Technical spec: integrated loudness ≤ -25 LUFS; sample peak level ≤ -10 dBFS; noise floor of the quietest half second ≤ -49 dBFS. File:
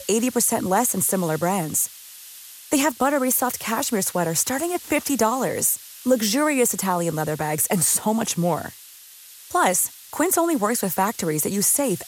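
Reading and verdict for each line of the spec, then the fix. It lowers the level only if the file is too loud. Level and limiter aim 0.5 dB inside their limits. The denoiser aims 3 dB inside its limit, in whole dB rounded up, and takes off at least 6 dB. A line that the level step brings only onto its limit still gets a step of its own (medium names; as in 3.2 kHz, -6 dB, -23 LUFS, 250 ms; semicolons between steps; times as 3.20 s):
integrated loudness -21.5 LUFS: fail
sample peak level -7.0 dBFS: fail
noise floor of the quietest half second -45 dBFS: fail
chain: noise reduction 6 dB, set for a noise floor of -45 dBFS; trim -4 dB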